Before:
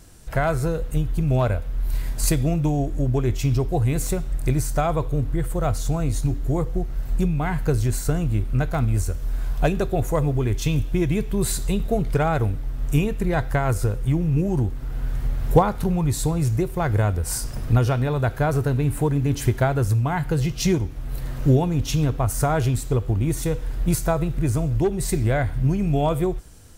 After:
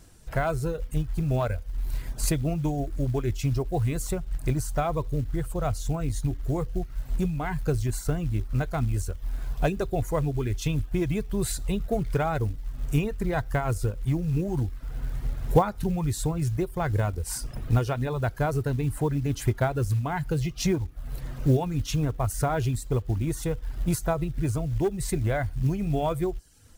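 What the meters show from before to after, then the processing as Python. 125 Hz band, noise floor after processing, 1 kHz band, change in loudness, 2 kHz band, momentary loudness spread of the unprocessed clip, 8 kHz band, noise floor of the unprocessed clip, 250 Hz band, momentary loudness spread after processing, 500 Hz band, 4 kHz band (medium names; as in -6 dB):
-5.5 dB, -40 dBFS, -4.5 dB, -5.0 dB, -4.5 dB, 5 LU, -5.5 dB, -31 dBFS, -5.0 dB, 6 LU, -4.5 dB, -5.0 dB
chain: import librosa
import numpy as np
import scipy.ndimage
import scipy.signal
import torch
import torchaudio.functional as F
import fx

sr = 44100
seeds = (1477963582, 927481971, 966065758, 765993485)

y = fx.dereverb_blind(x, sr, rt60_s=0.61)
y = fx.high_shelf(y, sr, hz=11000.0, db=-3.5)
y = fx.quant_float(y, sr, bits=4)
y = y * librosa.db_to_amplitude(-4.0)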